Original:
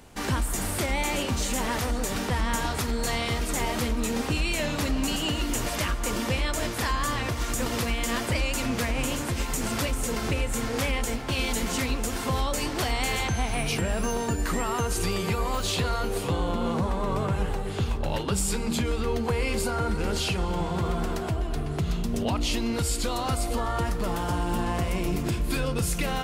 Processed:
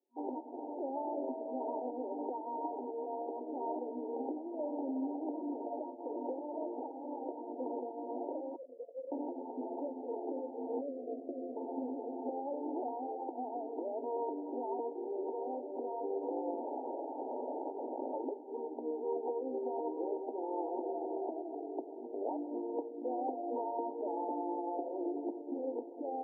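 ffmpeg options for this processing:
-filter_complex "[0:a]asettb=1/sr,asplit=3[s0][s1][s2];[s0]atrim=end=0.954[s3];[s1]atrim=start=0.95:end=1.87,asetpts=PTS-STARTPTS,afade=t=in:d=0.004:c=qsin,afade=t=out:st=0.916:d=0.004:c=qsin,aeval=exprs='val(0)+0.0178*sin(2*PI*650*n/s)':c=same[s4];[s2]atrim=start=1.866[s5];[s3][s4]acrossfade=d=0.004:c1=hsin:c2=qsin[s6];[s6][s5]acrossfade=d=0.004:c1=qsin:c2=hsin,asettb=1/sr,asplit=3[s7][s8][s9];[s7]atrim=end=8.564[s10];[s8]atrim=start=8.56:end=9.12,asetpts=PTS-STARTPTS,afade=t=in:d=0.004:c=qsin,afade=t=out:st=0.556:d=0.004:c=qsin,asplit=3[s11][s12][s13];[s11]bandpass=f=530:t=q:w=8,volume=1[s14];[s12]bandpass=f=1840:t=q:w=8,volume=0.501[s15];[s13]bandpass=f=2480:t=q:w=8,volume=0.355[s16];[s14][s15][s16]amix=inputs=3:normalize=0[s17];[s9]atrim=start=9.116[s18];[s10][s17]acrossfade=d=0.004:c1=hsin:c2=qsin[s19];[s19][s18]acrossfade=d=0.004:c1=qsin:c2=hsin,asettb=1/sr,asplit=3[s20][s21][s22];[s20]atrim=end=10.814[s23];[s21]atrim=start=10.81:end=11.57,asetpts=PTS-STARTPTS,afade=t=in:d=0.004:c=qsin,afade=t=out:st=0.756:d=0.004:c=qsin,asuperstop=centerf=900:order=20:qfactor=2.6[s24];[s22]atrim=start=11.566[s25];[s23][s24]acrossfade=d=0.004:c1=hsin:c2=qsin[s26];[s26][s25]acrossfade=d=0.004:c1=qsin:c2=hsin,asettb=1/sr,asplit=3[s27][s28][s29];[s27]atrim=end=16.604[s30];[s28]atrim=start=16.6:end=18.13,asetpts=PTS-STARTPTS,afade=t=in:d=0.004:c=qsin,afade=t=out:st=1.526:d=0.004:c=qsin,aeval=exprs='(mod(18.8*val(0)+1,2)-1)/18.8':c=same[s31];[s29]atrim=start=18.126[s32];[s30][s31]acrossfade=d=0.004:c1=hsin:c2=qsin[s33];[s33][s32]acrossfade=d=0.004:c1=qsin:c2=hsin,asettb=1/sr,asplit=3[s34][s35][s36];[s34]atrim=end=19.734[s37];[s35]atrim=start=19.73:end=25.07,asetpts=PTS-STARTPTS,afade=t=in:d=0.004:c=qsin,afade=t=out:st=5.336:d=0.004:c=qsin,highpass=130,lowpass=2400[s38];[s36]atrim=start=25.066[s39];[s37][s38]acrossfade=d=0.004:c1=hsin:c2=qsin[s40];[s40][s39]acrossfade=d=0.004:c1=qsin:c2=hsin,anlmdn=2.51,alimiter=limit=0.0944:level=0:latency=1:release=64,afftfilt=real='re*between(b*sr/4096,240,950)':imag='im*between(b*sr/4096,240,950)':win_size=4096:overlap=0.75,volume=0.631"

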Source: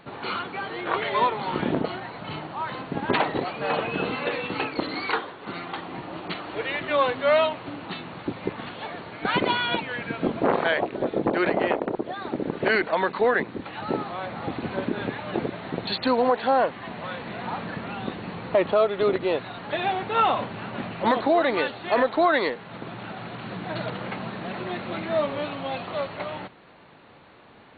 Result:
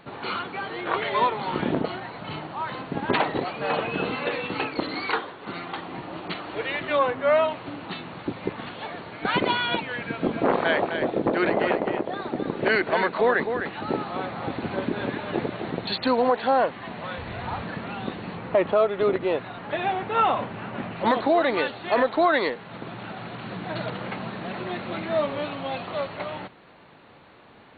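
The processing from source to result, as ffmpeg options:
-filter_complex "[0:a]asplit=3[s0][s1][s2];[s0]afade=t=out:st=6.98:d=0.02[s3];[s1]lowpass=2200,afade=t=in:st=6.98:d=0.02,afade=t=out:st=7.47:d=0.02[s4];[s2]afade=t=in:st=7.47:d=0.02[s5];[s3][s4][s5]amix=inputs=3:normalize=0,asettb=1/sr,asplit=3[s6][s7][s8];[s6]atrim=end=10.054[s9];[s7]atrim=start=10.05:end=15.71,asetpts=PTS-STARTPTS,afade=t=in:d=0.004:c=qsin,afade=t=out:st=5.656:d=0.004:c=qsin,aecho=1:1:257:0.447,atrim=end_sample=249606[s10];[s8]atrim=start=15.706[s11];[s9][s10]acrossfade=d=0.004:c1=hsin:c2=qsin[s12];[s12][s11]acrossfade=d=0.004:c1=qsin:c2=hsin,asettb=1/sr,asplit=3[s13][s14][s15];[s13]atrim=end=17.184[s16];[s14]atrim=start=17.18:end=17.62,asetpts=PTS-STARTPTS,afade=t=in:d=0.004:c=qsin,afade=t=out:st=0.436:d=0.004:c=qsin,lowshelf=f=120:t=q:w=1.5:g=12.5[s17];[s15]atrim=start=17.616[s18];[s16][s17]acrossfade=d=0.004:c1=hsin:c2=qsin[s19];[s19][s18]acrossfade=d=0.004:c1=qsin:c2=hsin,asettb=1/sr,asplit=3[s20][s21][s22];[s20]atrim=end=18.374[s23];[s21]atrim=start=18.37:end=20.96,asetpts=PTS-STARTPTS,afade=t=in:d=0.004:c=qsin,afade=t=out:st=2.586:d=0.004:c=qsin,lowpass=3100[s24];[s22]atrim=start=20.956[s25];[s23][s24]acrossfade=d=0.004:c1=hsin:c2=qsin[s26];[s26][s25]acrossfade=d=0.004:c1=qsin:c2=hsin"

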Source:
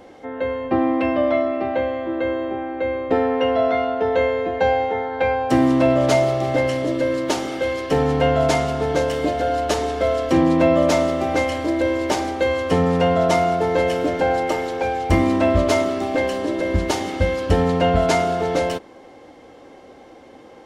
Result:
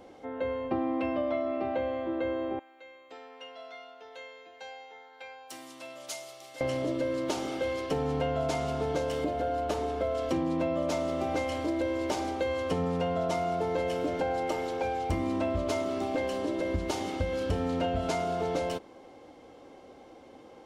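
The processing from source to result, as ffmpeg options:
-filter_complex "[0:a]asettb=1/sr,asplit=3[s0][s1][s2];[s0]atrim=end=2.594[s3];[s1]atrim=start=2.59:end=6.61,asetpts=PTS-STARTPTS,afade=t=in:d=0.004:c=qsin,afade=t=out:st=4.016:d=0.004:c=qsin,aderivative[s4];[s2]atrim=start=6.606[s5];[s3][s4]acrossfade=d=0.004:c1=hsin:c2=qsin[s6];[s6][s5]acrossfade=d=0.004:c1=qsin:c2=hsin,asettb=1/sr,asplit=3[s7][s8][s9];[s7]atrim=end=9.244[s10];[s8]atrim=start=9.24:end=10.15,asetpts=PTS-STARTPTS,afade=t=in:d=0.004:c=qsin,afade=t=out:st=0.906:d=0.004:c=qsin,equalizer=f=6300:w=0.45:g=-7[s11];[s9]atrim=start=10.146[s12];[s10][s11]acrossfade=d=0.004:c1=hsin:c2=qsin[s13];[s13][s12]acrossfade=d=0.004:c1=qsin:c2=hsin,asettb=1/sr,asplit=3[s14][s15][s16];[s14]atrim=end=17.304[s17];[s15]atrim=start=17.3:end=18.09,asetpts=PTS-STARTPTS,afade=t=in:d=0.004:c=qsin,afade=t=out:st=0.786:d=0.004:c=qsin,asplit=2[s18][s19];[s19]adelay=31,volume=0.631[s20];[s18][s20]amix=inputs=2:normalize=0,atrim=end_sample=34839[s21];[s16]atrim=start=18.086[s22];[s17][s21]acrossfade=d=0.004:c1=hsin:c2=qsin[s23];[s23][s22]acrossfade=d=0.004:c1=qsin:c2=hsin,equalizer=f=1800:t=o:w=0.35:g=-5.5,acompressor=threshold=0.112:ratio=6,volume=0.447"

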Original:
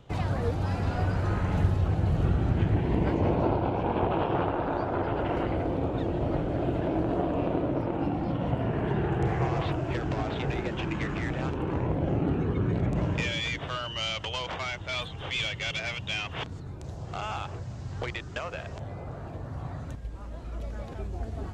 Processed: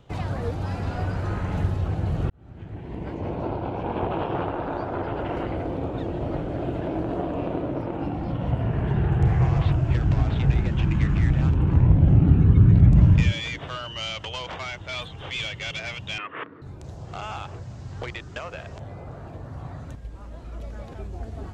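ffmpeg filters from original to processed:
-filter_complex "[0:a]asettb=1/sr,asplit=3[s0][s1][s2];[s0]atrim=end=7.914[s3];[s1]atrim=start=7.91:end=13.32,asetpts=PTS-STARTPTS,afade=t=in:d=0.004:c=qsin,afade=t=out:st=5.406:d=0.004:c=qsin,asubboost=boost=9:cutoff=160[s4];[s2]atrim=start=13.316[s5];[s3][s4]acrossfade=d=0.004:c1=hsin:c2=qsin[s6];[s6][s5]acrossfade=d=0.004:c1=qsin:c2=hsin,asettb=1/sr,asplit=3[s7][s8][s9];[s7]atrim=end=16.184[s10];[s8]atrim=start=16.18:end=16.62,asetpts=PTS-STARTPTS,afade=t=in:d=0.004:c=qsin,afade=t=out:st=0.436:d=0.004:c=qsin,highpass=300,equalizer=f=300:t=q:w=4:g=7,equalizer=f=460:t=q:w=4:g=4,equalizer=f=770:t=q:w=4:g=-9,equalizer=f=1200:t=q:w=4:g=9,equalizer=f=1800:t=q:w=4:g=6,lowpass=f=2400:w=0.5412,lowpass=f=2400:w=1.3066[s11];[s9]atrim=start=16.616[s12];[s10][s11]acrossfade=d=0.004:c1=hsin:c2=qsin[s13];[s13][s12]acrossfade=d=0.004:c1=qsin:c2=hsin,asplit=2[s14][s15];[s14]atrim=end=2.3,asetpts=PTS-STARTPTS,afade=t=out:st=2.296:d=0.004:c=hsin[s16];[s15]atrim=start=2.3,asetpts=PTS-STARTPTS,afade=t=in:d=1.72[s17];[s16][s17]concat=n=2:v=0:a=1"

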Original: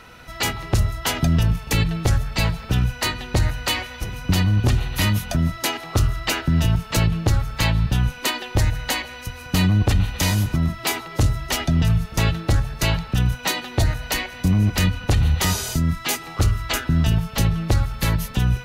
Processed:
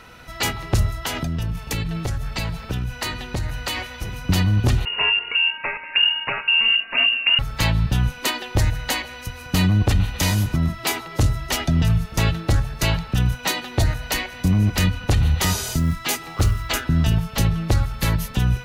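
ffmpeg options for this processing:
-filter_complex "[0:a]asettb=1/sr,asplit=3[s0][s1][s2];[s0]atrim=end=0.994[s3];[s1]atrim=start=0.99:end=4.16,asetpts=PTS-STARTPTS,afade=t=in:d=0.004:c=qsin,afade=t=out:st=3.166:d=0.004:c=qsin,acompressor=threshold=0.0891:ratio=6:attack=3.2:release=140:knee=1:detection=peak[s4];[s2]atrim=start=4.156[s5];[s3][s4]acrossfade=d=0.004:c1=hsin:c2=qsin[s6];[s6][s5]acrossfade=d=0.004:c1=qsin:c2=hsin,asettb=1/sr,asplit=3[s7][s8][s9];[s7]atrim=end=4.854[s10];[s8]atrim=start=4.85:end=7.39,asetpts=PTS-STARTPTS,afade=t=in:d=0.004:c=qsin,afade=t=out:st=2.536:d=0.004:c=qsin,lowpass=f=2500:t=q:w=0.5098,lowpass=f=2500:t=q:w=0.6013,lowpass=f=2500:t=q:w=0.9,lowpass=f=2500:t=q:w=2.563,afreqshift=-2900[s11];[s9]atrim=start=7.386[s12];[s10][s11]acrossfade=d=0.004:c1=hsin:c2=qsin[s13];[s13][s12]acrossfade=d=0.004:c1=qsin:c2=hsin,asettb=1/sr,asplit=3[s14][s15][s16];[s14]atrim=end=15.724[s17];[s15]atrim=start=15.72:end=16.81,asetpts=PTS-STARTPTS,afade=t=in:d=0.004:c=qsin,afade=t=out:st=1.086:d=0.004:c=qsin,acrusher=bits=8:mode=log:mix=0:aa=0.000001[s18];[s16]atrim=start=16.806[s19];[s17][s18]acrossfade=d=0.004:c1=hsin:c2=qsin[s20];[s20][s19]acrossfade=d=0.004:c1=qsin:c2=hsin"

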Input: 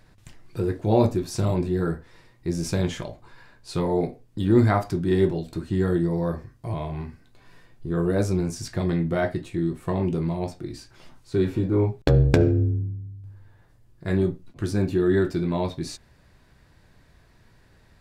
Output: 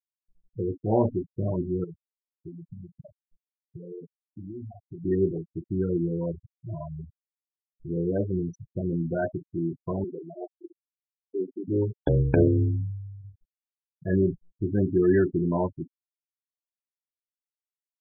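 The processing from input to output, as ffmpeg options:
-filter_complex "[0:a]asettb=1/sr,asplit=3[s0][s1][s2];[s0]atrim=end=1.844[s3];[s1]atrim=start=1.84:end=5.05,asetpts=PTS-STARTPTS,afade=t=in:d=0.004:c=qsin,afade=t=out:st=3.206:d=0.004:c=qsin,acompressor=threshold=0.0316:ratio=10:attack=3.2:release=140:knee=1:detection=peak[s4];[s2]atrim=start=5.046[s5];[s3][s4]acrossfade=d=0.004:c1=hsin:c2=qsin[s6];[s6][s5]acrossfade=d=0.004:c1=qsin:c2=hsin,asettb=1/sr,asplit=3[s7][s8][s9];[s7]atrim=end=10.044[s10];[s8]atrim=start=10.04:end=11.68,asetpts=PTS-STARTPTS,afade=t=in:d=0.004:c=qsin,afade=t=out:st=1.636:d=0.004:c=qsin,highpass=370[s11];[s9]atrim=start=11.676[s12];[s10][s11]acrossfade=d=0.004:c1=hsin:c2=qsin[s13];[s13][s12]acrossfade=d=0.004:c1=qsin:c2=hsin,asplit=3[s14][s15][s16];[s14]atrim=end=12.372[s17];[s15]atrim=start=12.368:end=15.672,asetpts=PTS-STARTPTS,volume=1.5[s18];[s16]atrim=start=15.668[s19];[s17][s18]acrossfade=d=0.004:c1=hsin:c2=hsin[s20];[s20][s19]acrossfade=d=0.004:c1=hsin:c2=hsin,afftfilt=real='re*gte(hypot(re,im),0.112)':imag='im*gte(hypot(re,im),0.112)':win_size=1024:overlap=0.75,lowshelf=f=60:g=-9.5,volume=0.708"

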